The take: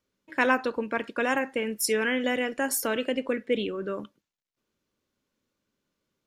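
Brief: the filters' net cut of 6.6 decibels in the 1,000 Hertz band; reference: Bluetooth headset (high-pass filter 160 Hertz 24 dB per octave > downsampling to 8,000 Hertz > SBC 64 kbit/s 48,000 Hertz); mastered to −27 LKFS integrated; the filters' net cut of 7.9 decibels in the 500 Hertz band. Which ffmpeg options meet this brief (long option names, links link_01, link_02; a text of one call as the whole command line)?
ffmpeg -i in.wav -af "highpass=frequency=160:width=0.5412,highpass=frequency=160:width=1.3066,equalizer=frequency=500:width_type=o:gain=-7.5,equalizer=frequency=1000:width_type=o:gain=-6,aresample=8000,aresample=44100,volume=5dB" -ar 48000 -c:a sbc -b:a 64k out.sbc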